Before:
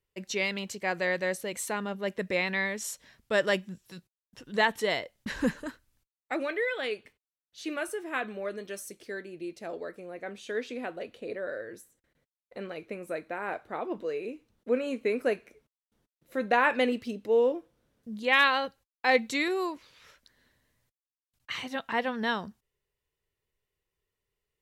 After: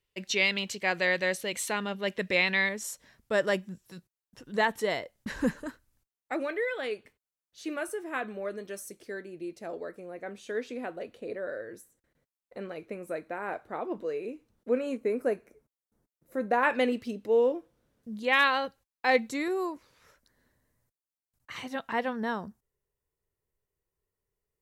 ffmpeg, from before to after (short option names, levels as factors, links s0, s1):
-af "asetnsamples=n=441:p=0,asendcmd='2.69 equalizer g -5;14.97 equalizer g -13.5;16.63 equalizer g -2.5;19.29 equalizer g -11.5;21.56 equalizer g -4.5;22.13 equalizer g -13',equalizer=f=3200:t=o:w=1.5:g=7"